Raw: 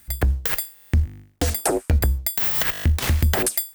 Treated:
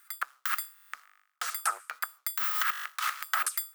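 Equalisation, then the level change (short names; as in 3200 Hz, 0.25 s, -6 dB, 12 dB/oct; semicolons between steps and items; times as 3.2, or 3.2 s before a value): ladder high-pass 1200 Hz, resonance 80%; +3.5 dB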